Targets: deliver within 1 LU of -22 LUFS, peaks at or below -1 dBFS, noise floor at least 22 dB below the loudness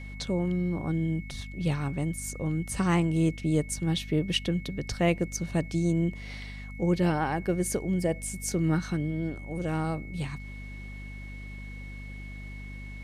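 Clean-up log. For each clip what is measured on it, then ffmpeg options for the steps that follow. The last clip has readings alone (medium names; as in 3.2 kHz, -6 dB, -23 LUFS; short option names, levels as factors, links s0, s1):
hum 50 Hz; highest harmonic 250 Hz; hum level -39 dBFS; steady tone 2.2 kHz; tone level -46 dBFS; loudness -29.0 LUFS; peak level -12.5 dBFS; loudness target -22.0 LUFS
-> -af "bandreject=f=50:t=h:w=4,bandreject=f=100:t=h:w=4,bandreject=f=150:t=h:w=4,bandreject=f=200:t=h:w=4,bandreject=f=250:t=h:w=4"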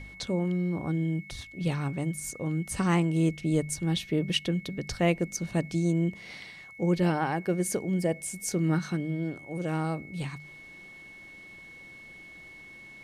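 hum not found; steady tone 2.2 kHz; tone level -46 dBFS
-> -af "bandreject=f=2200:w=30"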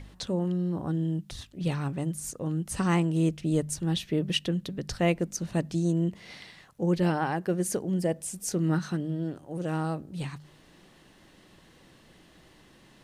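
steady tone not found; loudness -29.5 LUFS; peak level -13.0 dBFS; loudness target -22.0 LUFS
-> -af "volume=2.37"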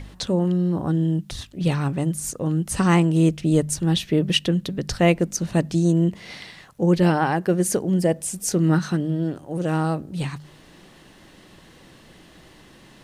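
loudness -22.0 LUFS; peak level -5.5 dBFS; noise floor -50 dBFS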